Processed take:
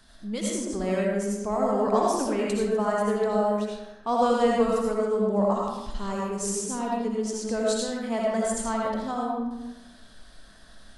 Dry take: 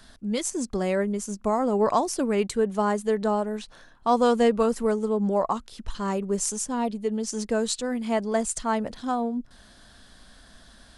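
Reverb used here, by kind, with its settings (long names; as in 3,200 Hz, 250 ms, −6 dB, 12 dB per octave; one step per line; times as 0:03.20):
comb and all-pass reverb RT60 1 s, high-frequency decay 0.65×, pre-delay 40 ms, DRR −3.5 dB
level −5.5 dB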